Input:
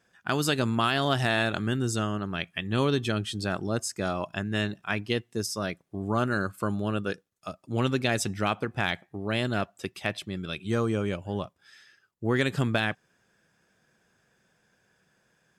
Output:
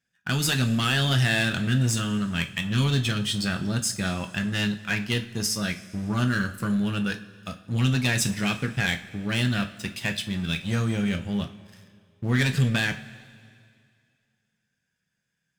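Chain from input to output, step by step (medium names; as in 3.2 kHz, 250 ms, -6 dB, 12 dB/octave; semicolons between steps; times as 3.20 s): high-order bell 620 Hz -11 dB 2.4 oct; waveshaping leveller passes 3; two-slope reverb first 0.29 s, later 2.3 s, from -18 dB, DRR 5 dB; trim -4.5 dB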